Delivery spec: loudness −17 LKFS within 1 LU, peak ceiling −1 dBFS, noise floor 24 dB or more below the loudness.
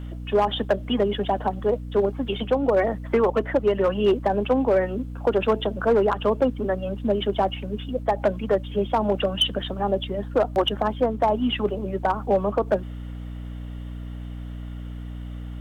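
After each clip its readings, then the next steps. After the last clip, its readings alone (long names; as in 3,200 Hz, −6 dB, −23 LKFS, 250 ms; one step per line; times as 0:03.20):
share of clipped samples 0.9%; peaks flattened at −13.0 dBFS; mains hum 60 Hz; hum harmonics up to 300 Hz; level of the hum −32 dBFS; integrated loudness −23.5 LKFS; sample peak −13.0 dBFS; target loudness −17.0 LKFS
→ clipped peaks rebuilt −13 dBFS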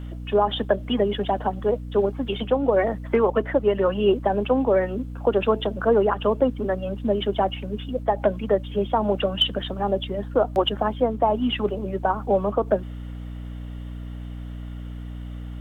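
share of clipped samples 0.0%; mains hum 60 Hz; hum harmonics up to 300 Hz; level of the hum −32 dBFS
→ mains-hum notches 60/120/180/240/300 Hz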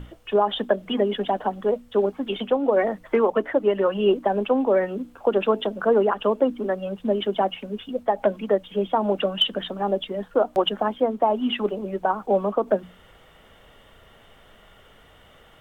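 mains hum none found; integrated loudness −23.5 LKFS; sample peak −8.5 dBFS; target loudness −17.0 LKFS
→ level +6.5 dB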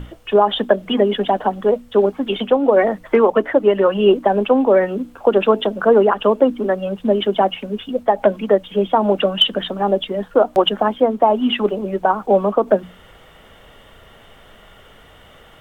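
integrated loudness −17.0 LKFS; sample peak −2.0 dBFS; background noise floor −46 dBFS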